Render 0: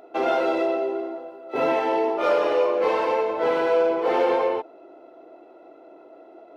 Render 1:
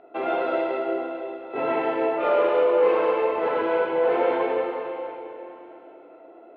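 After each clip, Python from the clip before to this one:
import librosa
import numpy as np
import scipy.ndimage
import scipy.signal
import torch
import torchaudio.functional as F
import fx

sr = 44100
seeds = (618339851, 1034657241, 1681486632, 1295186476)

y = scipy.signal.sosfilt(scipy.signal.butter(4, 3200.0, 'lowpass', fs=sr, output='sos'), x)
y = fx.rev_plate(y, sr, seeds[0], rt60_s=3.1, hf_ratio=1.0, predelay_ms=0, drr_db=-1.0)
y = F.gain(torch.from_numpy(y), -4.0).numpy()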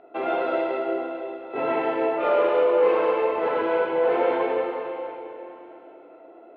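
y = x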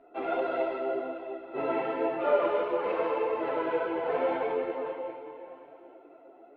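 y = fx.low_shelf(x, sr, hz=390.0, db=5.5)
y = fx.hum_notches(y, sr, base_hz=50, count=10)
y = fx.chorus_voices(y, sr, voices=6, hz=0.85, base_ms=11, depth_ms=4.1, mix_pct=55)
y = F.gain(torch.from_numpy(y), -4.0).numpy()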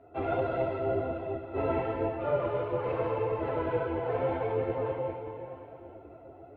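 y = fx.octave_divider(x, sr, octaves=2, level_db=2.0)
y = fx.peak_eq(y, sr, hz=410.0, db=4.0, octaves=2.8)
y = fx.rider(y, sr, range_db=4, speed_s=0.5)
y = F.gain(torch.from_numpy(y), -4.5).numpy()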